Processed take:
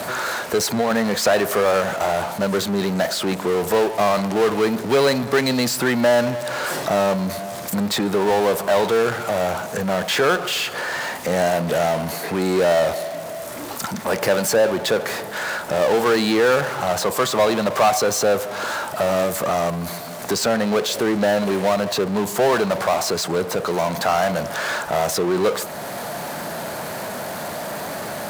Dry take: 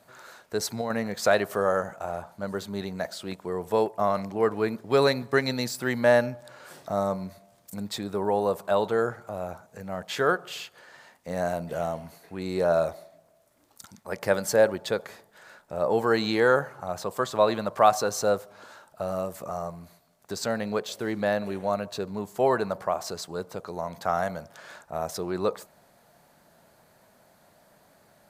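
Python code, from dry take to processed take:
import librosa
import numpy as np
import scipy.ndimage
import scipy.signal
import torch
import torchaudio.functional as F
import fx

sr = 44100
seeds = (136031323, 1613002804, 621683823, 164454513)

y = fx.power_curve(x, sr, exponent=0.5)
y = fx.highpass(y, sr, hz=150.0, slope=6)
y = fx.band_squash(y, sr, depth_pct=40)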